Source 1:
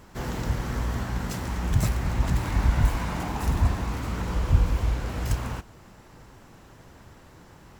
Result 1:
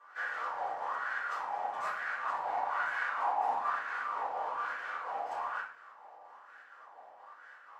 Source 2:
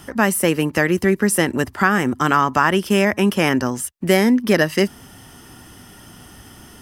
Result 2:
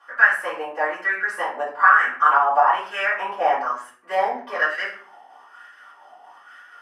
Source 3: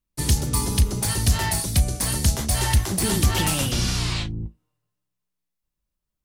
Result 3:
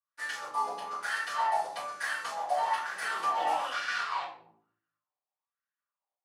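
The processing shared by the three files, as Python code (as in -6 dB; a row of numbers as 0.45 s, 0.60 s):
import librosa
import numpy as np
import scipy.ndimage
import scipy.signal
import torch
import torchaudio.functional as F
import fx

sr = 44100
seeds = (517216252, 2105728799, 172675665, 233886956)

p1 = scipy.signal.sosfilt(scipy.signal.butter(2, 570.0, 'highpass', fs=sr, output='sos'), x)
p2 = fx.wah_lfo(p1, sr, hz=1.1, low_hz=760.0, high_hz=1600.0, q=5.2)
p3 = fx.volume_shaper(p2, sr, bpm=127, per_beat=2, depth_db=-15, release_ms=95.0, shape='slow start')
p4 = p2 + F.gain(torch.from_numpy(p3), -2.0).numpy()
p5 = fx.room_shoebox(p4, sr, seeds[0], volume_m3=46.0, walls='mixed', distance_m=2.4)
y = F.gain(torch.from_numpy(p5), -6.0).numpy()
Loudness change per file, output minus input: -7.5 LU, -2.5 LU, -10.0 LU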